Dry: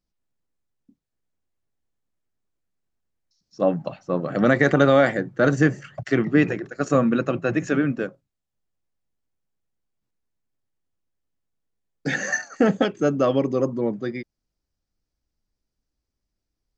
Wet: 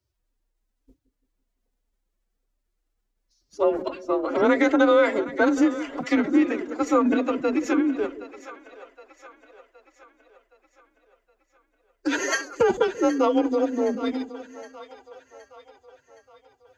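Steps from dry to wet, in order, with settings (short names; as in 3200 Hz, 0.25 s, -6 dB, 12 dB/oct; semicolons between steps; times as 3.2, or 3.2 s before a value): in parallel at +1 dB: compressor, threshold -25 dBFS, peak gain reduction 13.5 dB; on the sum: frequency shift +20 Hz; formant-preserving pitch shift +10 st; split-band echo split 520 Hz, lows 0.169 s, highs 0.768 s, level -14 dB; gain -3.5 dB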